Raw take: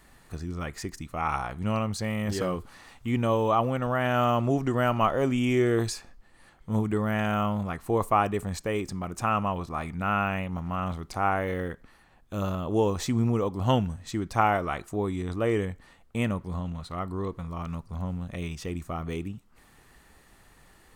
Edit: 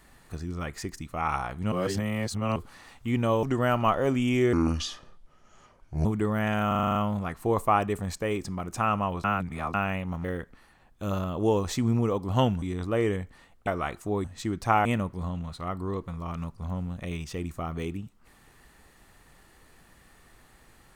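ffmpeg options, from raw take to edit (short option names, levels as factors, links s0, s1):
-filter_complex "[0:a]asplit=20[s0][s1][s2][s3][s4][s5][s6][s7][s8][s9][s10][s11][s12][s13][s14][s15][s16][s17][s18][s19];[s0]atrim=end=1.722[s20];[s1]atrim=start=1.718:end=2.562,asetpts=PTS-STARTPTS,areverse[s21];[s2]atrim=start=2.558:end=3.432[s22];[s3]atrim=start=4.588:end=5.694[s23];[s4]atrim=start=5.69:end=6.77,asetpts=PTS-STARTPTS,asetrate=31311,aresample=44100[s24];[s5]atrim=start=6.766:end=7.432[s25];[s6]atrim=start=7.388:end=7.432[s26];[s7]atrim=start=7.388:end=7.432[s27];[s8]atrim=start=7.388:end=7.432[s28];[s9]atrim=start=7.388:end=7.432[s29];[s10]atrim=start=7.388:end=7.432[s30];[s11]atrim=start=7.388:end=7.432[s31];[s12]atrim=start=7.388:end=9.682[s32];[s13]atrim=start=9.678:end=10.182,asetpts=PTS-STARTPTS,areverse[s33];[s14]atrim=start=10.178:end=10.682[s34];[s15]atrim=start=11.548:end=13.932[s35];[s16]atrim=start=15.108:end=16.162[s36];[s17]atrim=start=14.538:end=15.112[s37];[s18]atrim=start=13.928:end=14.542[s38];[s19]atrim=start=16.158[s39];[s20][s21]acrossfade=d=0.004:c1=hsin:c2=hsin[s40];[s40][s22]acrossfade=d=0.004:c1=hsin:c2=hsin[s41];[s41][s23]acrossfade=d=0.004:c1=hsin:c2=hsin[s42];[s42][s24]acrossfade=d=0.004:c1=hsin:c2=hsin[s43];[s43][s25]acrossfade=d=0.004:c1=hsin:c2=hsin[s44];[s44][s26]acrossfade=d=0.004:c1=hsin:c2=hsin[s45];[s45][s27]acrossfade=d=0.004:c1=hsin:c2=hsin[s46];[s46][s28]acrossfade=d=0.004:c1=hsin:c2=hsin[s47];[s47][s29]acrossfade=d=0.004:c1=hsin:c2=hsin[s48];[s48][s30]acrossfade=d=0.004:c1=hsin:c2=hsin[s49];[s49][s31]acrossfade=d=0.004:c1=hsin:c2=hsin[s50];[s50][s32]acrossfade=d=0.004:c1=hsin:c2=hsin[s51];[s51][s33]acrossfade=d=0.004:c1=hsin:c2=hsin[s52];[s52][s34]acrossfade=d=0.004:c1=hsin:c2=hsin[s53];[s53][s35]acrossfade=d=0.004:c1=hsin:c2=hsin[s54];[s54][s36]acrossfade=d=0.004:c1=hsin:c2=hsin[s55];[s55][s37]acrossfade=d=0.004:c1=hsin:c2=hsin[s56];[s56][s38]acrossfade=d=0.004:c1=hsin:c2=hsin[s57];[s57][s39]acrossfade=d=0.004:c1=hsin:c2=hsin"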